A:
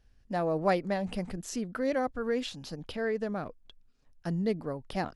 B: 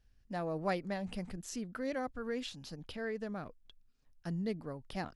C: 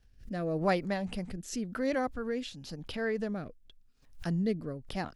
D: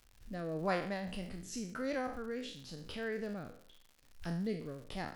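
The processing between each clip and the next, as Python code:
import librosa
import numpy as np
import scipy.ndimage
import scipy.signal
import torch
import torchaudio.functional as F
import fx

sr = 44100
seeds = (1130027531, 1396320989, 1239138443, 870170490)

y1 = fx.peak_eq(x, sr, hz=550.0, db=-4.0, octaves=2.2)
y1 = F.gain(torch.from_numpy(y1), -4.5).numpy()
y2 = fx.rotary(y1, sr, hz=0.9)
y2 = fx.pre_swell(y2, sr, db_per_s=140.0)
y2 = F.gain(torch.from_numpy(y2), 6.5).numpy()
y3 = fx.spec_trails(y2, sr, decay_s=0.53)
y3 = fx.dmg_crackle(y3, sr, seeds[0], per_s=170.0, level_db=-42.0)
y3 = F.gain(torch.from_numpy(y3), -7.0).numpy()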